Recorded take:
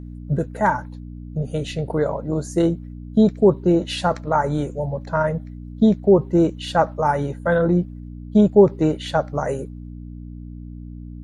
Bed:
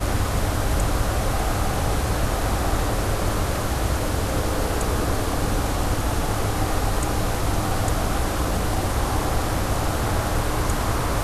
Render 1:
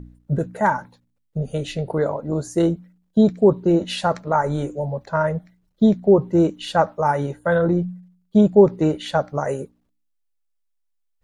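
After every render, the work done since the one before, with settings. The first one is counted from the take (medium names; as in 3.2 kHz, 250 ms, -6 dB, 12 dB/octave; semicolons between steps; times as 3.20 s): de-hum 60 Hz, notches 5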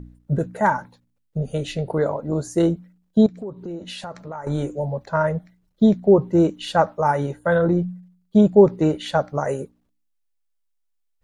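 3.26–4.47 s: compression 4:1, threshold -32 dBFS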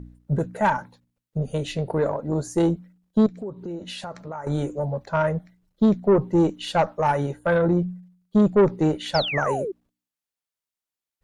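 valve stage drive 11 dB, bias 0.3; 9.14–9.72 s: painted sound fall 350–5600 Hz -28 dBFS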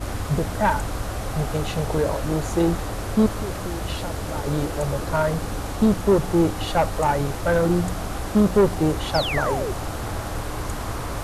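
add bed -6 dB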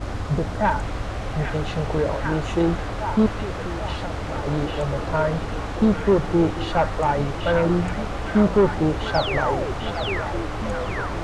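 distance through air 100 m; repeats whose band climbs or falls 799 ms, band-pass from 2.5 kHz, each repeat -0.7 oct, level 0 dB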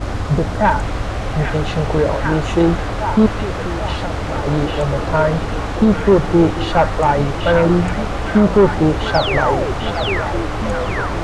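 trim +6.5 dB; peak limiter -3 dBFS, peak gain reduction 3 dB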